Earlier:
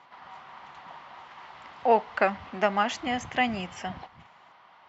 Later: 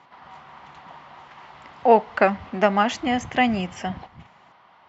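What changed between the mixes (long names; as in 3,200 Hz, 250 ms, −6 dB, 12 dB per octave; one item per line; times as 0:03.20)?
speech +3.5 dB
master: add low-shelf EQ 490 Hz +6.5 dB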